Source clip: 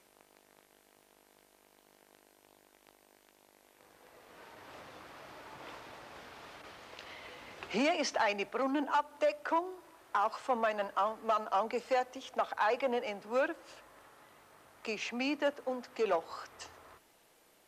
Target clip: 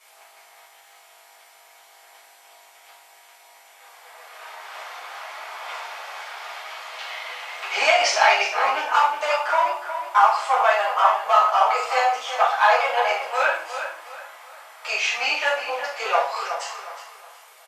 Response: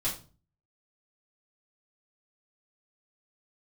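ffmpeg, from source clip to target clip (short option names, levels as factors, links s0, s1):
-filter_complex "[0:a]highpass=f=700:w=0.5412,highpass=f=700:w=1.3066,asplit=2[s0][s1];[s1]adelay=364,lowpass=f=4400:p=1,volume=0.355,asplit=2[s2][s3];[s3]adelay=364,lowpass=f=4400:p=1,volume=0.34,asplit=2[s4][s5];[s5]adelay=364,lowpass=f=4400:p=1,volume=0.34,asplit=2[s6][s7];[s7]adelay=364,lowpass=f=4400:p=1,volume=0.34[s8];[s0][s2][s4][s6][s8]amix=inputs=5:normalize=0[s9];[1:a]atrim=start_sample=2205,asetrate=28224,aresample=44100[s10];[s9][s10]afir=irnorm=-1:irlink=0,volume=2.24"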